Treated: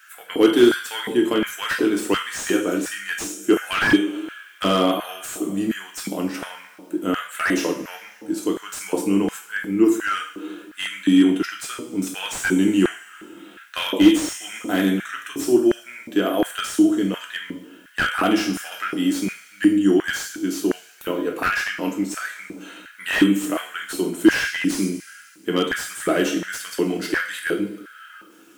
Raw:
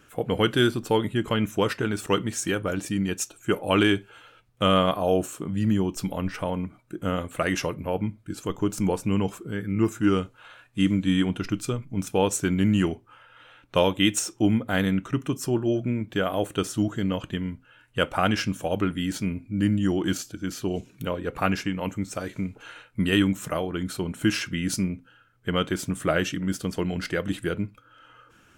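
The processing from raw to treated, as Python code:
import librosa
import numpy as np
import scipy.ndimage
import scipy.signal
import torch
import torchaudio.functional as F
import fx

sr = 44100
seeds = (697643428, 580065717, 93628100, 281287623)

y = fx.high_shelf(x, sr, hz=5500.0, db=11.5)
y = fx.dmg_noise_colour(y, sr, seeds[0], colour='white', level_db=-63.0)
y = fx.rev_double_slope(y, sr, seeds[1], early_s=0.47, late_s=2.1, knee_db=-17, drr_db=0.0)
y = fx.filter_lfo_highpass(y, sr, shape='square', hz=1.4, low_hz=310.0, high_hz=1600.0, q=4.2)
y = fx.slew_limit(y, sr, full_power_hz=300.0)
y = y * 10.0 ** (-2.0 / 20.0)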